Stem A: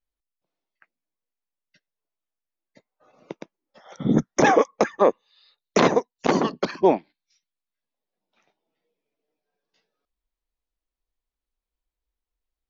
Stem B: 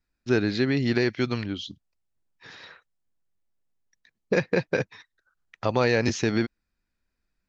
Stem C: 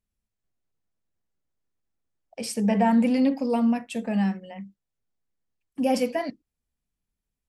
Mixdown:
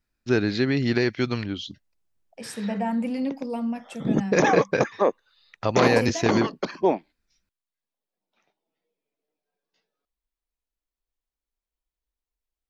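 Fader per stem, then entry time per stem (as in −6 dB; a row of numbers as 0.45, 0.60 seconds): −3.5, +1.0, −6.0 decibels; 0.00, 0.00, 0.00 seconds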